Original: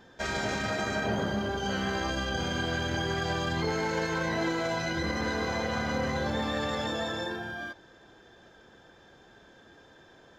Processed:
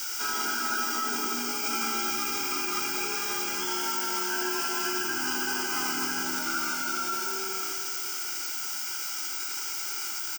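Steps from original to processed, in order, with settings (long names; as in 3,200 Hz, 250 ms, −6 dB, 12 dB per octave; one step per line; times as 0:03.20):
bit-depth reduction 6 bits, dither triangular
frequency shifter +34 Hz
high-pass filter 340 Hz 12 dB per octave
phaser with its sweep stopped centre 720 Hz, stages 8
comb filter 2.1 ms, depth 43%
bucket-brigade delay 83 ms, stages 2,048, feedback 84%, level −8.5 dB
formants moved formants −4 semitones
flat-topped bell 3,200 Hz +10.5 dB
phaser with its sweep stopped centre 2,800 Hz, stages 8
level +5 dB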